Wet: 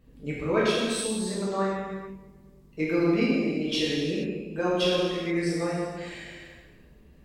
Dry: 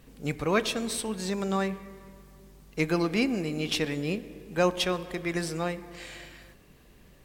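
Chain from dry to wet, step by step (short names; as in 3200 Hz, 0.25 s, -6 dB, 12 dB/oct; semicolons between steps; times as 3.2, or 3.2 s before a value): formant sharpening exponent 1.5; non-linear reverb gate 0.5 s falling, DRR -8 dB; gain -6 dB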